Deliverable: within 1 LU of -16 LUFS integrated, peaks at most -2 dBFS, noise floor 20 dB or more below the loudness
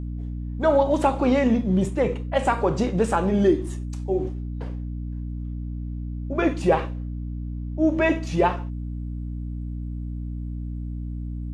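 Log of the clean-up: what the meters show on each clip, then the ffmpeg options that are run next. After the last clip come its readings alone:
hum 60 Hz; harmonics up to 300 Hz; hum level -28 dBFS; loudness -25.0 LUFS; peak -7.0 dBFS; loudness target -16.0 LUFS
-> -af "bandreject=f=60:t=h:w=4,bandreject=f=120:t=h:w=4,bandreject=f=180:t=h:w=4,bandreject=f=240:t=h:w=4,bandreject=f=300:t=h:w=4"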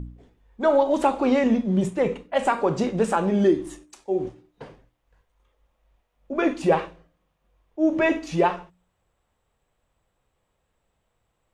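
hum none; loudness -23.0 LUFS; peak -8.0 dBFS; loudness target -16.0 LUFS
-> -af "volume=7dB,alimiter=limit=-2dB:level=0:latency=1"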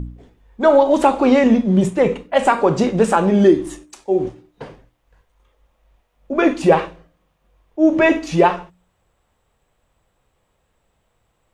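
loudness -16.0 LUFS; peak -2.0 dBFS; noise floor -67 dBFS

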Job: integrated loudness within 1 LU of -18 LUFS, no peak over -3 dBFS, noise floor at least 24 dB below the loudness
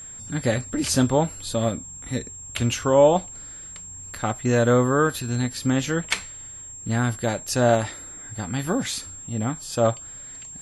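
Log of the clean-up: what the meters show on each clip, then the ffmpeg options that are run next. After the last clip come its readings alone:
steady tone 7500 Hz; tone level -37 dBFS; loudness -23.5 LUFS; peak -6.0 dBFS; loudness target -18.0 LUFS
-> -af "bandreject=f=7.5k:w=30"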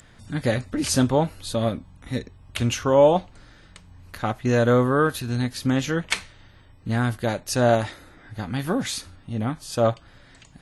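steady tone none; loudness -23.5 LUFS; peak -6.0 dBFS; loudness target -18.0 LUFS
-> -af "volume=5.5dB,alimiter=limit=-3dB:level=0:latency=1"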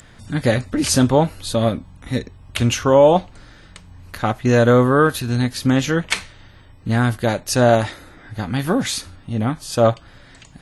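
loudness -18.5 LUFS; peak -3.0 dBFS; noise floor -46 dBFS

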